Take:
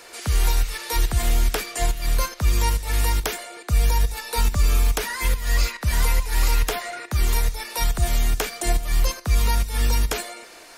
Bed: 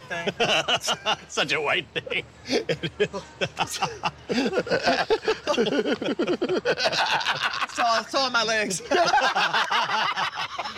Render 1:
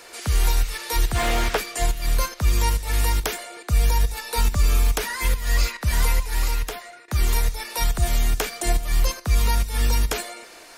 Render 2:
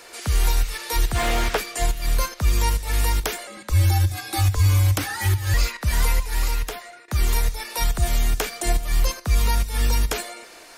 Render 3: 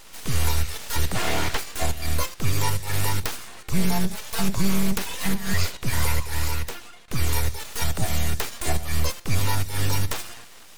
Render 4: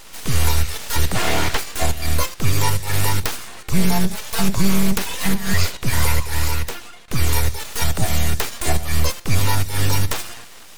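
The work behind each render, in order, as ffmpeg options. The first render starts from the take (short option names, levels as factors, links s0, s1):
-filter_complex "[0:a]asplit=3[s0][s1][s2];[s0]afade=t=out:st=1.14:d=0.02[s3];[s1]asplit=2[s4][s5];[s5]highpass=f=720:p=1,volume=14.1,asoftclip=type=tanh:threshold=0.355[s6];[s4][s6]amix=inputs=2:normalize=0,lowpass=f=1400:p=1,volume=0.501,afade=t=in:st=1.14:d=0.02,afade=t=out:st=1.56:d=0.02[s7];[s2]afade=t=in:st=1.56:d=0.02[s8];[s3][s7][s8]amix=inputs=3:normalize=0,asplit=2[s9][s10];[s9]atrim=end=7.08,asetpts=PTS-STARTPTS,afade=t=out:st=6.09:d=0.99:silence=0.177828[s11];[s10]atrim=start=7.08,asetpts=PTS-STARTPTS,afade=t=in:d=0.004:c=hsin:silence=0.177828[s12];[s11][s12]concat=n=2:v=0:a=1"
-filter_complex "[0:a]asettb=1/sr,asplit=3[s0][s1][s2];[s0]atrim=end=3.474[s3];[s1]atrim=start=3.47:end=5.54,asetpts=PTS-STARTPTS,afade=t=in:d=0.004:c=qsin,afade=t=out:st=2.066:d=0.004:c=qsin,afreqshift=-140[s4];[s2]atrim=start=5.536[s5];[s3][s4]acrossfade=d=0.004:c1=hsin:c2=qsin[s6];[s6][s5]acrossfade=d=0.004:c1=qsin:c2=hsin"
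-af "aeval=exprs='abs(val(0))':c=same"
-af "volume=1.78"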